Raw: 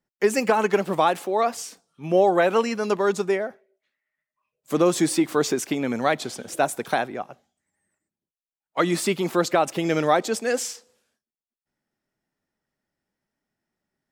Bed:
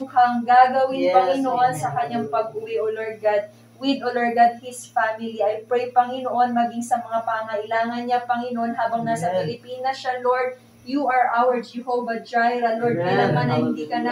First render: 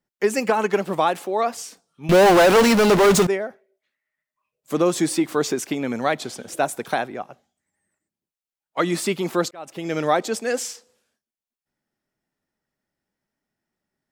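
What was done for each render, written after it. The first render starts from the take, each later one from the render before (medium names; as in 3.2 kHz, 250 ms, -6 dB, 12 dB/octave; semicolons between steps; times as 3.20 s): 2.09–3.27 s: power-law waveshaper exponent 0.35; 9.51–10.09 s: fade in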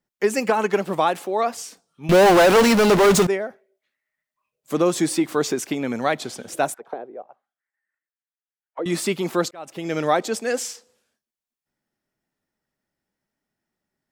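6.74–8.86 s: auto-wah 430–1700 Hz, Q 3.3, down, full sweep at -23.5 dBFS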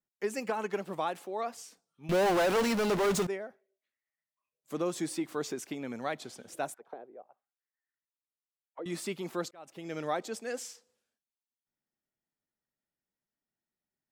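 trim -13 dB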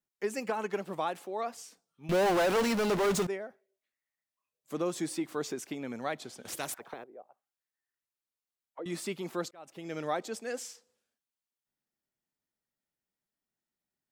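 6.45–7.04 s: spectrum-flattening compressor 2:1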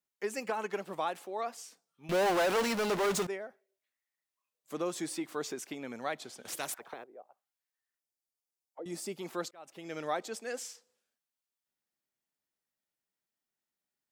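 7.99–9.19 s: time-frequency box 910–4500 Hz -8 dB; bass shelf 290 Hz -7.5 dB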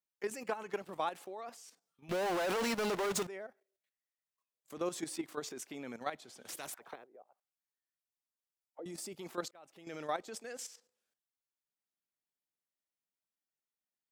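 level held to a coarse grid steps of 11 dB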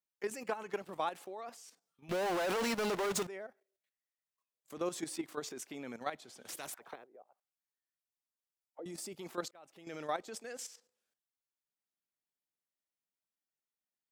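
no audible change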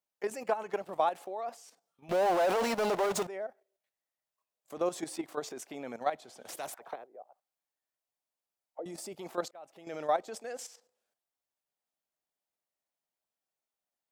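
peaking EQ 680 Hz +10 dB 1.1 oct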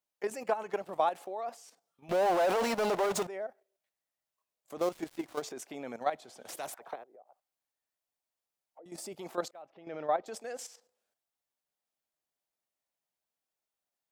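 4.78–5.42 s: dead-time distortion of 0.11 ms; 7.03–8.92 s: compression 3:1, threshold -54 dBFS; 9.62–10.26 s: distance through air 260 m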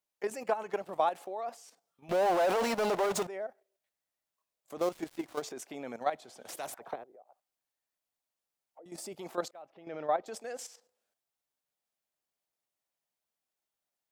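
6.69–7.12 s: bass shelf 320 Hz +10 dB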